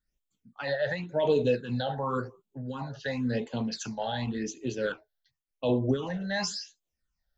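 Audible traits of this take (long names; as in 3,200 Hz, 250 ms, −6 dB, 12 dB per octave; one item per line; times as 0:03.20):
phaser sweep stages 8, 0.92 Hz, lowest notch 310–1,700 Hz
amplitude modulation by smooth noise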